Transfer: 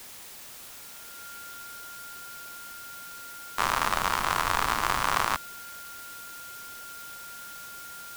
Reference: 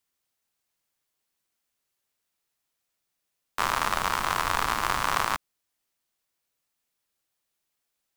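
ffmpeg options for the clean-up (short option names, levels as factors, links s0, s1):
-af "bandreject=f=1400:w=30,afwtdn=0.0056"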